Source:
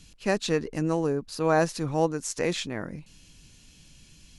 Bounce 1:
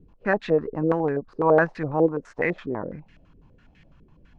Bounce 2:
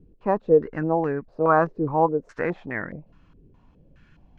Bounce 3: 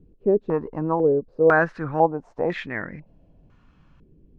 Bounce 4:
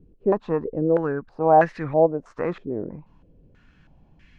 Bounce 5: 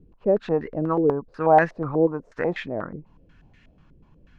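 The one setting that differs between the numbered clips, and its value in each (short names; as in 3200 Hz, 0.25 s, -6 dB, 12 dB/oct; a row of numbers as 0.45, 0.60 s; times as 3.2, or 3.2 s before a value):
stepped low-pass, rate: 12, 4.8, 2, 3.1, 8.2 Hz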